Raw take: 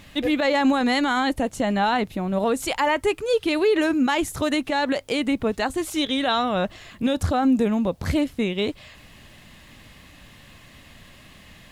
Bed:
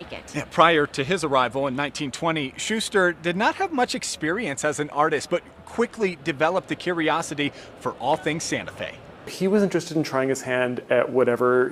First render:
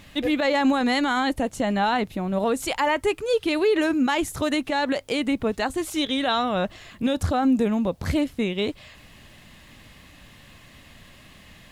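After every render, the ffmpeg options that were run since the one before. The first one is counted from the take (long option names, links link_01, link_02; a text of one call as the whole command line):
ffmpeg -i in.wav -af "volume=-1dB" out.wav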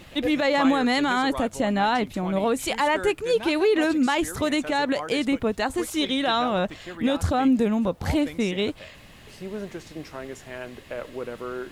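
ffmpeg -i in.wav -i bed.wav -filter_complex "[1:a]volume=-14dB[link_01];[0:a][link_01]amix=inputs=2:normalize=0" out.wav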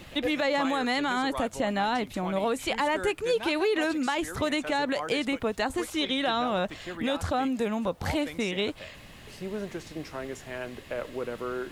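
ffmpeg -i in.wav -filter_complex "[0:a]acrossover=split=500|4300[link_01][link_02][link_03];[link_01]acompressor=threshold=-31dB:ratio=4[link_04];[link_02]acompressor=threshold=-26dB:ratio=4[link_05];[link_03]acompressor=threshold=-43dB:ratio=4[link_06];[link_04][link_05][link_06]amix=inputs=3:normalize=0" out.wav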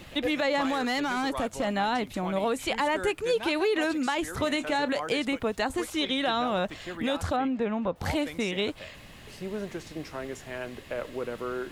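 ffmpeg -i in.wav -filter_complex "[0:a]asettb=1/sr,asplit=3[link_01][link_02][link_03];[link_01]atrim=end=0.614[link_04];[link_02]atrim=start=0.61:end=1.68,asetpts=PTS-STARTPTS,afade=type=in:duration=0.004:curve=qsin,afade=type=out:start_time=1.066:duration=0.004:curve=qsin,asoftclip=type=hard:threshold=-22.5dB[link_05];[link_03]atrim=start=1.676[link_06];[link_04][link_05]acrossfade=duration=0.004:curve1=hsin:curve2=qsin[link_07];[link_07][link_06]acrossfade=duration=0.004:curve1=qsin:curve2=hsin,asettb=1/sr,asplit=3[link_08][link_09][link_10];[link_08]atrim=end=4.304[link_11];[link_09]atrim=start=4.3:end=4.99,asetpts=PTS-STARTPTS,afade=type=in:duration=0.004:curve=qsin,afade=type=out:start_time=0.686:duration=0.004:curve=qsin,asplit=2[link_12][link_13];[link_13]adelay=31,volume=-13dB[link_14];[link_12][link_14]amix=inputs=2:normalize=0,atrim=end_sample=30429[link_15];[link_10]atrim=start=4.986[link_16];[link_11][link_15]acrossfade=duration=0.004:curve1=hsin:curve2=qsin[link_17];[link_17][link_16]acrossfade=duration=0.004:curve1=qsin:curve2=hsin,asettb=1/sr,asplit=3[link_18][link_19][link_20];[link_18]atrim=end=7.364[link_21];[link_19]atrim=start=7.36:end=7.96,asetpts=PTS-STARTPTS,afade=type=in:duration=0.004:curve=qsin,afade=type=out:start_time=0.596:duration=0.004:curve=qsin,lowpass=2600[link_22];[link_20]atrim=start=7.956[link_23];[link_21][link_22]acrossfade=duration=0.004:curve1=hsin:curve2=qsin[link_24];[link_24][link_23]acrossfade=duration=0.004:curve1=qsin:curve2=hsin" out.wav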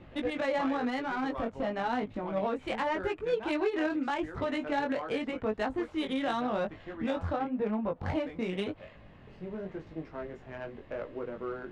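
ffmpeg -i in.wav -af "flanger=delay=18.5:depth=4.2:speed=0.9,adynamicsmooth=sensitivity=1.5:basefreq=1600" out.wav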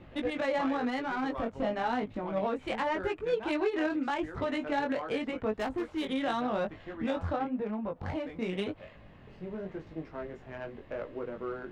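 ffmpeg -i in.wav -filter_complex "[0:a]asettb=1/sr,asplit=3[link_01][link_02][link_03];[link_01]atrim=end=1.524[link_04];[link_02]atrim=start=1.52:end=1.92,asetpts=PTS-STARTPTS,afade=type=in:duration=0.004:curve=qsin,afade=type=out:start_time=0.396:duration=0.004:curve=qsin,asplit=2[link_05][link_06];[link_06]adelay=23,volume=-7dB[link_07];[link_05][link_07]amix=inputs=2:normalize=0,atrim=end_sample=17640[link_08];[link_03]atrim=start=1.916[link_09];[link_04][link_08]acrossfade=duration=0.004:curve1=hsin:curve2=qsin[link_10];[link_10][link_09]acrossfade=duration=0.004:curve1=qsin:curve2=hsin,asettb=1/sr,asplit=3[link_11][link_12][link_13];[link_11]atrim=end=5.584[link_14];[link_12]atrim=start=5.58:end=6.06,asetpts=PTS-STARTPTS,afade=type=in:duration=0.004:curve=qsin,afade=type=out:start_time=0.476:duration=0.004:curve=qsin,asoftclip=type=hard:threshold=-28dB[link_15];[link_13]atrim=start=6.056[link_16];[link_14][link_15]acrossfade=duration=0.004:curve1=hsin:curve2=qsin[link_17];[link_17][link_16]acrossfade=duration=0.004:curve1=qsin:curve2=hsin,asettb=1/sr,asplit=3[link_18][link_19][link_20];[link_18]atrim=end=7.564[link_21];[link_19]atrim=start=7.56:end=8.42,asetpts=PTS-STARTPTS,afade=type=in:duration=0.004:curve=qsin,afade=type=out:start_time=0.856:duration=0.004:curve=qsin,acompressor=threshold=-36dB:ratio=1.5:attack=3.2:release=140:knee=1:detection=peak[link_22];[link_20]atrim=start=8.416[link_23];[link_21][link_22]acrossfade=duration=0.004:curve1=hsin:curve2=qsin[link_24];[link_24][link_23]acrossfade=duration=0.004:curve1=qsin:curve2=hsin" out.wav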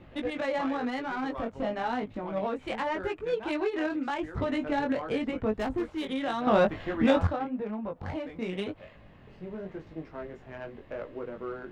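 ffmpeg -i in.wav -filter_complex "[0:a]asettb=1/sr,asplit=3[link_01][link_02][link_03];[link_01]atrim=end=4.354[link_04];[link_02]atrim=start=4.35:end=5.9,asetpts=PTS-STARTPTS,afade=type=in:duration=0.004:curve=qsin,afade=type=out:start_time=1.546:duration=0.004:curve=qsin,lowshelf=frequency=260:gain=8.5[link_05];[link_03]atrim=start=5.896[link_06];[link_04][link_05]acrossfade=duration=0.004:curve1=hsin:curve2=qsin[link_07];[link_07][link_06]acrossfade=duration=0.004:curve1=qsin:curve2=hsin,asplit=3[link_08][link_09][link_10];[link_08]atrim=end=6.472[link_11];[link_09]atrim=start=6.468:end=7.272,asetpts=PTS-STARTPTS,volume=9.5dB[link_12];[link_10]atrim=start=7.268[link_13];[link_11][link_12]acrossfade=duration=0.004:curve1=hsin:curve2=hsin[link_14];[link_14][link_13]acrossfade=duration=0.004:curve1=hsin:curve2=hsin" out.wav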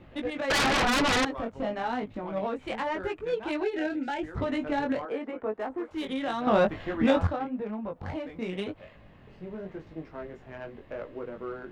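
ffmpeg -i in.wav -filter_complex "[0:a]asettb=1/sr,asplit=3[link_01][link_02][link_03];[link_01]atrim=end=0.504[link_04];[link_02]atrim=start=0.5:end=1.25,asetpts=PTS-STARTPTS,afade=type=in:duration=0.004:curve=qsin,afade=type=out:start_time=0.746:duration=0.004:curve=qsin,aeval=exprs='0.0891*sin(PI/2*5.01*val(0)/0.0891)':channel_layout=same[link_05];[link_03]atrim=start=1.246[link_06];[link_04][link_05]acrossfade=duration=0.004:curve1=hsin:curve2=qsin[link_07];[link_07][link_06]acrossfade=duration=0.004:curve1=qsin:curve2=hsin,asettb=1/sr,asplit=3[link_08][link_09][link_10];[link_08]atrim=end=3.634[link_11];[link_09]atrim=start=3.63:end=4.23,asetpts=PTS-STARTPTS,afade=type=in:duration=0.004:curve=qsin,afade=type=out:start_time=0.596:duration=0.004:curve=qsin,asuperstop=centerf=1100:order=20:qfactor=3.1[link_12];[link_10]atrim=start=4.226[link_13];[link_11][link_12]acrossfade=duration=0.004:curve1=hsin:curve2=qsin[link_14];[link_14][link_13]acrossfade=duration=0.004:curve1=qsin:curve2=hsin,asettb=1/sr,asplit=3[link_15][link_16][link_17];[link_15]atrim=end=5.054[link_18];[link_16]atrim=start=5.05:end=5.91,asetpts=PTS-STARTPTS,afade=type=in:duration=0.004:curve=qsin,afade=type=out:start_time=0.856:duration=0.004:curve=qsin,acrossover=split=290 2000:gain=0.0631 1 0.2[link_19][link_20][link_21];[link_19][link_20][link_21]amix=inputs=3:normalize=0[link_22];[link_17]atrim=start=5.906[link_23];[link_18][link_22]acrossfade=duration=0.004:curve1=hsin:curve2=qsin[link_24];[link_24][link_23]acrossfade=duration=0.004:curve1=qsin:curve2=hsin" out.wav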